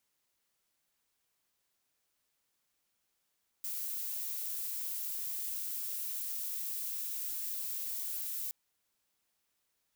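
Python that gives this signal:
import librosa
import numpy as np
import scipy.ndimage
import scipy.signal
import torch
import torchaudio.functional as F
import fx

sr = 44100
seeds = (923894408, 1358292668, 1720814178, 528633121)

y = fx.noise_colour(sr, seeds[0], length_s=4.87, colour='violet', level_db=-38.0)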